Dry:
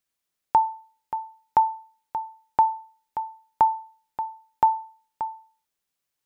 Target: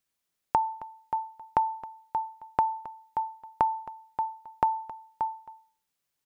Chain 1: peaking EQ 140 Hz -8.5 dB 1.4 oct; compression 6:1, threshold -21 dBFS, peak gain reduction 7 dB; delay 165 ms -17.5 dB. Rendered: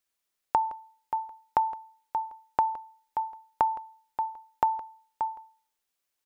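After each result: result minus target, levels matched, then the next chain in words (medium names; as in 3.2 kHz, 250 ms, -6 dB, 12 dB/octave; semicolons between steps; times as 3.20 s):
echo 103 ms early; 125 Hz band -7.0 dB
peaking EQ 140 Hz -8.5 dB 1.4 oct; compression 6:1, threshold -21 dBFS, peak gain reduction 7 dB; delay 268 ms -17.5 dB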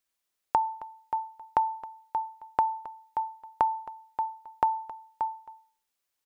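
125 Hz band -6.5 dB
peaking EQ 140 Hz +2.5 dB 1.4 oct; compression 6:1, threshold -21 dBFS, peak gain reduction 7.5 dB; delay 268 ms -17.5 dB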